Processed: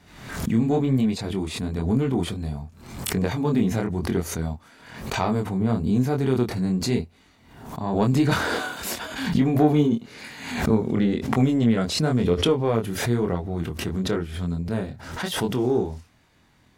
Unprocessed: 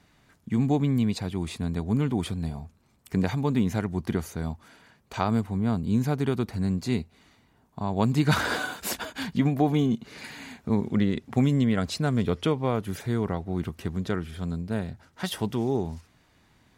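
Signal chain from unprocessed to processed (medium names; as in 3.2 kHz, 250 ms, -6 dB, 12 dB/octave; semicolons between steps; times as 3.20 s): dynamic bell 420 Hz, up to +5 dB, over -36 dBFS, Q 1.1; in parallel at -4 dB: saturation -16.5 dBFS, distortion -15 dB; on the sum: chorus 0.97 Hz, depth 4.6 ms; swell ahead of each attack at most 68 dB/s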